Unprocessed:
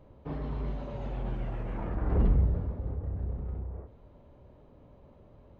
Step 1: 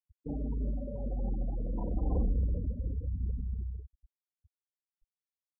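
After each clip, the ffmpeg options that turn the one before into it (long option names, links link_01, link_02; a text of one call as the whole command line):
ffmpeg -i in.wav -af "afftfilt=real='re*gte(hypot(re,im),0.0316)':imag='im*gte(hypot(re,im),0.0316)':win_size=1024:overlap=0.75,aecho=1:1:3.9:0.5,acompressor=threshold=-25dB:ratio=6" out.wav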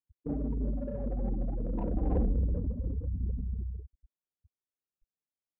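ffmpeg -i in.wav -af "crystalizer=i=6:c=0,adynamicsmooth=sensitivity=3:basefreq=700,equalizer=frequency=370:width=0.4:gain=4.5" out.wav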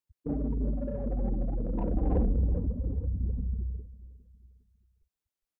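ffmpeg -i in.wav -af "aecho=1:1:406|812|1218:0.112|0.046|0.0189,volume=2dB" out.wav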